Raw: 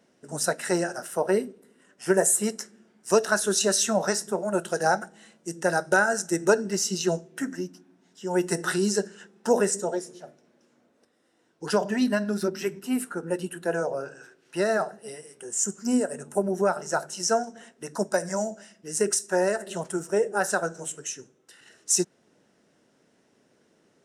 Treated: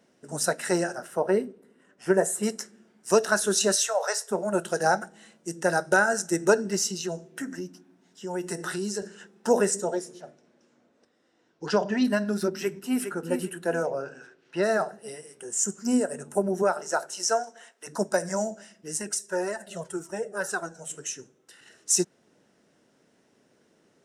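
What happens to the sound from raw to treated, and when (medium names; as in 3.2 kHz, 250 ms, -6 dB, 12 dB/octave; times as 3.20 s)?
0.95–2.43 s: treble shelf 3.4 kHz -9.5 dB
3.75–4.31 s: elliptic high-pass 460 Hz
6.87–9.02 s: compression 2:1, threshold -32 dBFS
10.21–12.03 s: low-pass 9.7 kHz -> 5.8 kHz 24 dB/octave
12.55–13.07 s: echo throw 410 ms, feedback 25%, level -7.5 dB
13.82–14.62 s: low-pass 7.3 kHz -> 4.3 kHz
16.62–17.86 s: high-pass 230 Hz -> 770 Hz
18.97–20.90 s: Shepard-style flanger falling 1.8 Hz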